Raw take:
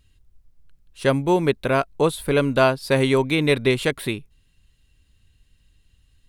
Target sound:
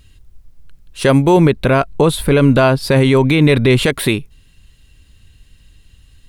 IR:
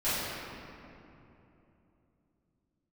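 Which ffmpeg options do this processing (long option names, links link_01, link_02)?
-filter_complex "[0:a]asettb=1/sr,asplit=3[link_01][link_02][link_03];[link_01]atrim=end=1.374[link_04];[link_02]atrim=start=1.37:end=3.86,asetpts=PTS-STARTPTS,afade=type=in:duration=0.004:curve=qsin,afade=type=out:start_time=2.486:duration=0.004:curve=qsin,bass=frequency=250:gain=5,treble=frequency=4000:gain=-4[link_05];[link_03]atrim=start=3.856[link_06];[link_04][link_05]acrossfade=duration=0.004:curve1=hsin:curve2=qsin[link_07];[link_07][link_06]acrossfade=duration=0.004:curve1=qsin:curve2=hsin,alimiter=level_in=13.5dB:limit=-1dB:release=50:level=0:latency=1,volume=-1dB"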